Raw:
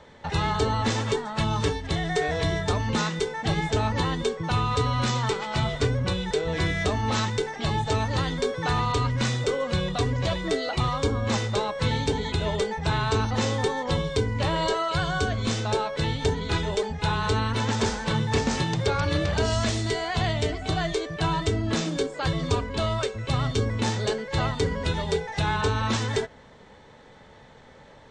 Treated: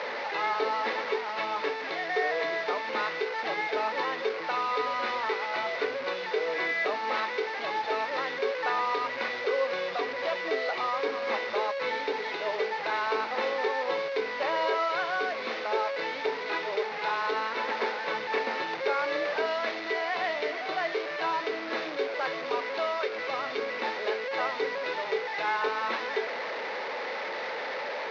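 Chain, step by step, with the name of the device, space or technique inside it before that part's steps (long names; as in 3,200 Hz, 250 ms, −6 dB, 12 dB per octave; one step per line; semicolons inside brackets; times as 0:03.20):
digital answering machine (band-pass filter 340–3,200 Hz; linear delta modulator 32 kbit/s, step −27.5 dBFS; loudspeaker in its box 400–4,400 Hz, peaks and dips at 520 Hz +4 dB, 2,100 Hz +5 dB, 3,200 Hz −6 dB)
level −1 dB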